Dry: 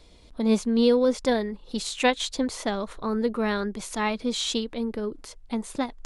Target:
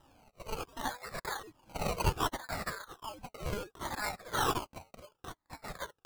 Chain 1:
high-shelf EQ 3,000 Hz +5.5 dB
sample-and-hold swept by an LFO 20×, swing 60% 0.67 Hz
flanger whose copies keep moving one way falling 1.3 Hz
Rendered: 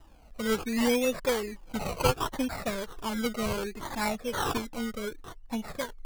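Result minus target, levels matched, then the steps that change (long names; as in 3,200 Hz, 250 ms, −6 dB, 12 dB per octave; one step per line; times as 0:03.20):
1,000 Hz band −4.0 dB
add first: high-pass filter 1,200 Hz 24 dB per octave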